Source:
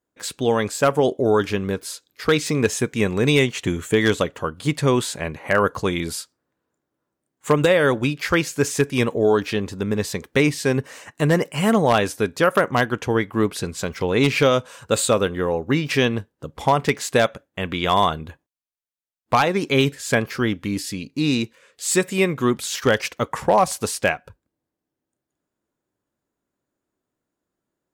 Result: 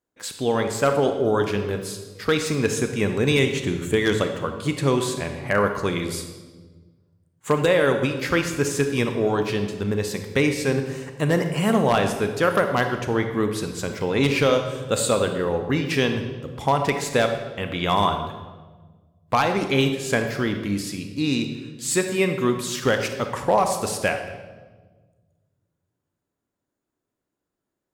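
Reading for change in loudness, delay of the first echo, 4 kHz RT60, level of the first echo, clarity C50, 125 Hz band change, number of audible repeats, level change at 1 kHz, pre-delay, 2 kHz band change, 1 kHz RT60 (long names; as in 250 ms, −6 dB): −2.0 dB, no echo audible, 1.0 s, no echo audible, 7.0 dB, −1.5 dB, no echo audible, −2.0 dB, 29 ms, −2.0 dB, 1.2 s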